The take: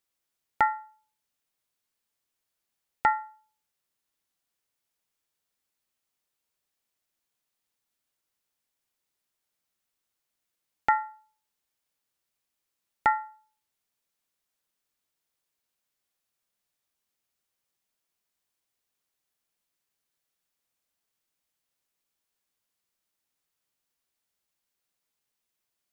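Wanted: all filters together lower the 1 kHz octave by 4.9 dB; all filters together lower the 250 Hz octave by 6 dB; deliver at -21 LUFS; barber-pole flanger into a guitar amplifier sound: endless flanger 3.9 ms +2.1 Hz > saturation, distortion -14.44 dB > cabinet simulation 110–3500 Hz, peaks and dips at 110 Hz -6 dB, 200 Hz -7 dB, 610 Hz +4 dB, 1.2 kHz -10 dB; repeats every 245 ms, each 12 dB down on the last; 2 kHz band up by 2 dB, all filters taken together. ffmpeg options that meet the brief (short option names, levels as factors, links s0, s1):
-filter_complex "[0:a]equalizer=f=250:t=o:g=-5.5,equalizer=f=1000:t=o:g=-5,equalizer=f=2000:t=o:g=4.5,aecho=1:1:245|490|735:0.251|0.0628|0.0157,asplit=2[s0][s1];[s1]adelay=3.9,afreqshift=2.1[s2];[s0][s2]amix=inputs=2:normalize=1,asoftclip=threshold=0.0944,highpass=110,equalizer=f=110:t=q:w=4:g=-6,equalizer=f=200:t=q:w=4:g=-7,equalizer=f=610:t=q:w=4:g=4,equalizer=f=1200:t=q:w=4:g=-10,lowpass=f=3500:w=0.5412,lowpass=f=3500:w=1.3066,volume=7.08"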